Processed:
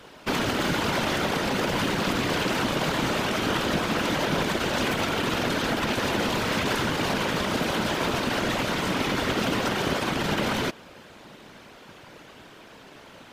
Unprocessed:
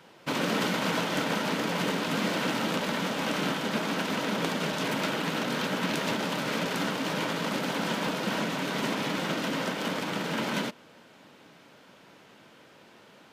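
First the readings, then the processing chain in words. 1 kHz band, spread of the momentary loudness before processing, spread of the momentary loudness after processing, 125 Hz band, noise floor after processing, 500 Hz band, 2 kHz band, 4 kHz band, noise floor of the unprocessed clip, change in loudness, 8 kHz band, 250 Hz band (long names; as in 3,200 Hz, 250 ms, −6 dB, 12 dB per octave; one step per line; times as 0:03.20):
+4.0 dB, 3 LU, 1 LU, +5.0 dB, −48 dBFS, +4.0 dB, +4.0 dB, +4.0 dB, −55 dBFS, +4.0 dB, +4.0 dB, +3.0 dB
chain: brickwall limiter −23.5 dBFS, peak gain reduction 9 dB
random phases in short frames
level +7 dB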